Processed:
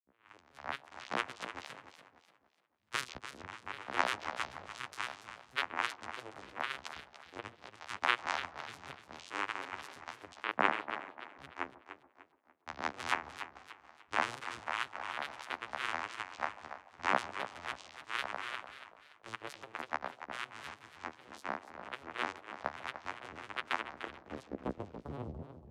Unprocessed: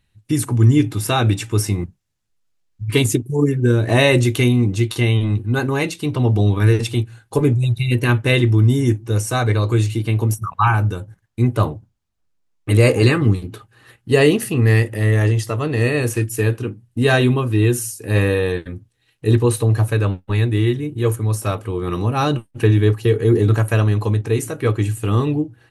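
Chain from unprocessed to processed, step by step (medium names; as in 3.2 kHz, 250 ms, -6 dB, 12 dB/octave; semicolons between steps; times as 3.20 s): tape start-up on the opening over 1.14 s; differentiator; harmonic-percussive split percussive +9 dB; dynamic bell 1.8 kHz, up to +6 dB, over -47 dBFS, Q 6.5; band-pass sweep 1.4 kHz -> 200 Hz, 23.71–25.49 s; vocoder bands 4, saw 96.3 Hz; granulator, spray 21 ms, pitch spread up and down by 7 st; on a send: feedback echo behind a band-pass 143 ms, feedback 64%, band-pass 480 Hz, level -16.5 dB; on the sum: modulated delay 290 ms, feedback 36%, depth 219 cents, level -11 dB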